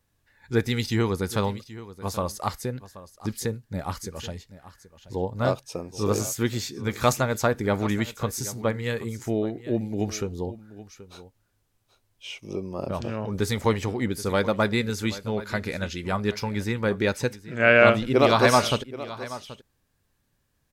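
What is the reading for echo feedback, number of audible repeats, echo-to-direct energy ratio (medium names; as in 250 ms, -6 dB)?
no regular repeats, 1, -16.5 dB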